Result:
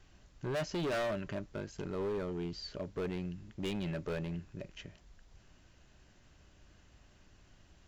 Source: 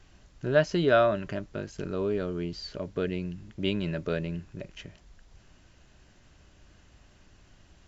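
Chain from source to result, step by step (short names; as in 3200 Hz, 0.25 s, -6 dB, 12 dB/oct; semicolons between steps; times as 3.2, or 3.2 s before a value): hard clip -27.5 dBFS, distortion -5 dB; gain -4.5 dB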